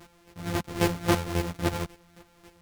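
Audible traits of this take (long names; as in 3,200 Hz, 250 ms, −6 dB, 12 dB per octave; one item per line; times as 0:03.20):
a buzz of ramps at a fixed pitch in blocks of 256 samples
chopped level 3.7 Hz, depth 65%, duty 20%
a shimmering, thickened sound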